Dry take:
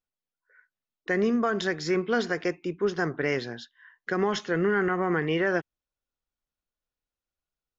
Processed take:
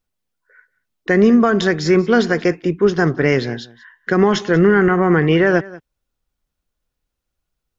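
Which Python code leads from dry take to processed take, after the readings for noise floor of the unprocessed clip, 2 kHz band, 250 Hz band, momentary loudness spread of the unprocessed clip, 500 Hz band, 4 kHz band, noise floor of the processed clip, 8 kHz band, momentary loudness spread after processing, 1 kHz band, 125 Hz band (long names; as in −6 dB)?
below −85 dBFS, +9.5 dB, +13.5 dB, 7 LU, +11.5 dB, +9.0 dB, −79 dBFS, can't be measured, 9 LU, +9.5 dB, +15.0 dB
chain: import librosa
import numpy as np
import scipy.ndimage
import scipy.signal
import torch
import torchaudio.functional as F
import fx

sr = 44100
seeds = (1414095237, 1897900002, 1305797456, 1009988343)

p1 = fx.low_shelf(x, sr, hz=260.0, db=8.5)
p2 = p1 + fx.echo_single(p1, sr, ms=185, db=-20.0, dry=0)
y = p2 * librosa.db_to_amplitude(9.0)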